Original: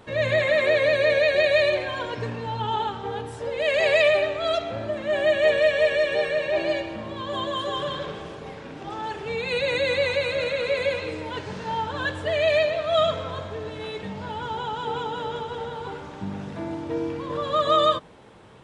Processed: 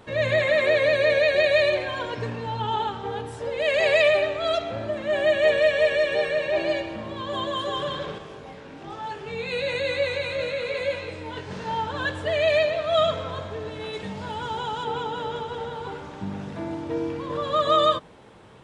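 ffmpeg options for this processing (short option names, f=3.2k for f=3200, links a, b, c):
-filter_complex "[0:a]asettb=1/sr,asplit=3[a][b][c];[a]atrim=end=8.184[d];[b]atrim=start=8.18:end=11.51,asetpts=PTS-STARTPTS,afade=t=in:d=0.004:c=qsin,afade=t=out:st=3.326:d=0.004:c=qsin,flanger=delay=19.5:depth=2.8:speed=1.1[e];[c]atrim=start=11.506[f];[d][e]acrossfade=d=0.004:c1=hsin:c2=qsin[g];[g][f]acrossfade=d=0.004:c1=qsin:c2=hsin,asettb=1/sr,asplit=3[h][i][j];[h]atrim=end=13.934[k];[i]atrim=start=13.93:end=14.84,asetpts=PTS-STARTPTS,afade=t=in:d=0.004:c=qsin,afade=t=out:st=0.906:d=0.004:c=qsin,highshelf=f=5.5k:g=8.5[l];[j]atrim=start=14.836[m];[k][l]acrossfade=d=0.004:c1=hsin:c2=qsin[n];[n][m]acrossfade=d=0.004:c1=qsin:c2=hsin"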